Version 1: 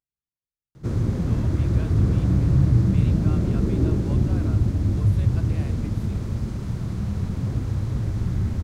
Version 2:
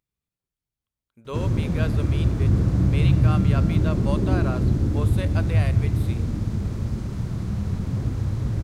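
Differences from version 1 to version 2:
speech +12.0 dB
background: entry +0.50 s

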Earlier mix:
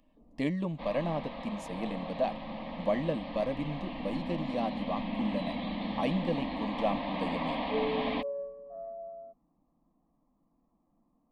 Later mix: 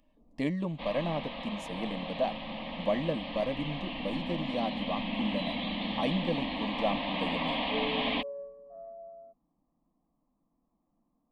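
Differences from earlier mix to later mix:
first sound: add parametric band 3,000 Hz +10 dB 0.88 octaves
second sound −4.0 dB

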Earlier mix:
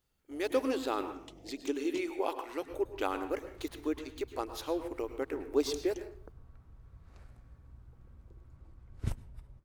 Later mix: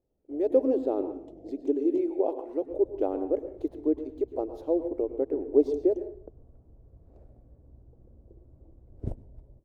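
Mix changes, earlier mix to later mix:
speech: add high-shelf EQ 6,300 Hz −3.5 dB
master: add drawn EQ curve 170 Hz 0 dB, 310 Hz +8 dB, 630 Hz +8 dB, 1,200 Hz −16 dB, 2,500 Hz −20 dB

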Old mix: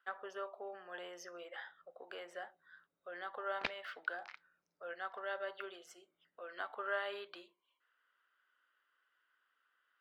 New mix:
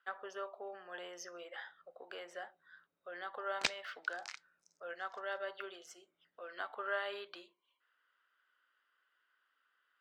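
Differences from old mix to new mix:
speech: add high-frequency loss of the air 270 metres
master: remove high-frequency loss of the air 350 metres

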